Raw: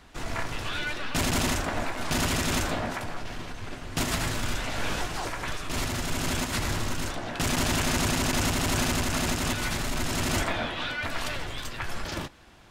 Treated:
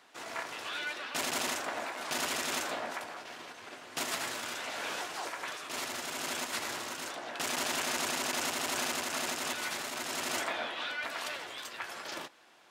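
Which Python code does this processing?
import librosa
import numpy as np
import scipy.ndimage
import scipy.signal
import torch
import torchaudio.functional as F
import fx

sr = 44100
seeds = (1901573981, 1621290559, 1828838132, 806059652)

y = scipy.signal.sosfilt(scipy.signal.butter(2, 420.0, 'highpass', fs=sr, output='sos'), x)
y = y * librosa.db_to_amplitude(-4.5)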